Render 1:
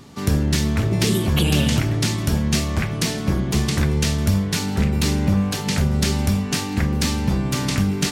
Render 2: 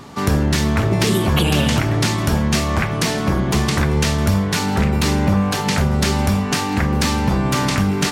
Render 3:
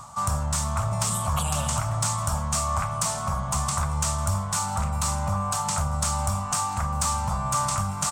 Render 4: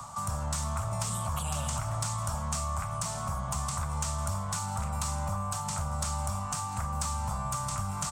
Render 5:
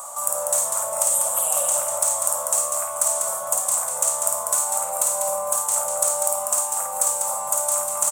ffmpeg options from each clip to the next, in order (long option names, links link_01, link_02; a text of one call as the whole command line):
ffmpeg -i in.wav -filter_complex "[0:a]equalizer=frequency=1000:width=0.61:gain=8,asplit=2[link_01][link_02];[link_02]alimiter=limit=-13dB:level=0:latency=1:release=210,volume=2.5dB[link_03];[link_01][link_03]amix=inputs=2:normalize=0,volume=-4dB" out.wav
ffmpeg -i in.wav -af "firequalizer=gain_entry='entry(110,0);entry(370,-29);entry(580,-1);entry(1200,8);entry(1700,-10);entry(2700,-8);entry(4400,-4);entry(8100,14);entry(11000,1)':delay=0.05:min_phase=1,areverse,acompressor=mode=upward:threshold=-20dB:ratio=2.5,areverse,asoftclip=type=tanh:threshold=-5.5dB,volume=-7dB" out.wav
ffmpeg -i in.wav -filter_complex "[0:a]acrossover=split=93|190|7500[link_01][link_02][link_03][link_04];[link_01]acompressor=threshold=-36dB:ratio=4[link_05];[link_02]acompressor=threshold=-41dB:ratio=4[link_06];[link_03]acompressor=threshold=-35dB:ratio=4[link_07];[link_04]acompressor=threshold=-42dB:ratio=4[link_08];[link_05][link_06][link_07][link_08]amix=inputs=4:normalize=0" out.wav
ffmpeg -i in.wav -af "aexciter=amount=9.7:drive=4.1:freq=7100,highpass=frequency=560:width_type=q:width=4.9,aecho=1:1:52.48|195.3:0.631|0.562" out.wav